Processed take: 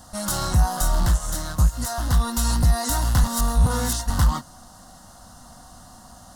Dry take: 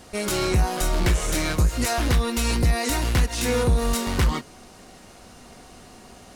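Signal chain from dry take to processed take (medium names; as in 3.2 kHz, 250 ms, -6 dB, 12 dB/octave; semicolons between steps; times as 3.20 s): rattle on loud lows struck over -28 dBFS, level -25 dBFS; treble shelf 11 kHz +3 dB; static phaser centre 990 Hz, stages 4; 1.06–2.20 s: upward expansion 1.5:1, over -29 dBFS; 3.24–4.10 s: reverse; trim +3 dB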